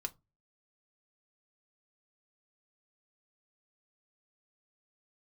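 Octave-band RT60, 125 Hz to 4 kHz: 0.45, 0.35, 0.25, 0.20, 0.15, 0.15 s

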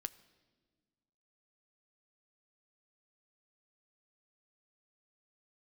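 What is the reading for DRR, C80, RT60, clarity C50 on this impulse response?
12.0 dB, 20.0 dB, 1.5 s, 19.0 dB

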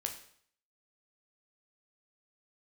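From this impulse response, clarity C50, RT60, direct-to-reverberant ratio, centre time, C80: 9.0 dB, 0.60 s, 3.5 dB, 16 ms, 12.5 dB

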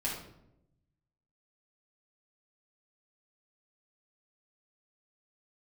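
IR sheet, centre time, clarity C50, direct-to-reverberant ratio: 41 ms, 3.5 dB, -5.0 dB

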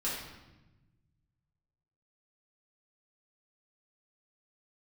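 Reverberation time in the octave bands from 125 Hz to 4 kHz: 2.3, 1.6, 1.1, 0.95, 0.95, 0.85 s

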